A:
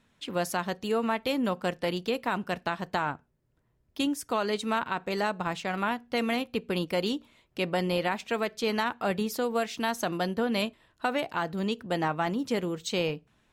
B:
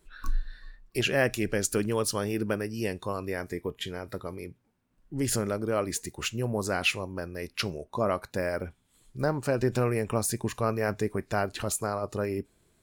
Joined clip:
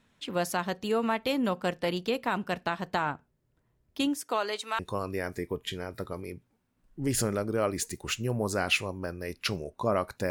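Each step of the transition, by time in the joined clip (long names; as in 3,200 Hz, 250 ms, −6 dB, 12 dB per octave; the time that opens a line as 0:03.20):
A
0:04.17–0:04.79: high-pass filter 230 Hz → 990 Hz
0:04.79: continue with B from 0:02.93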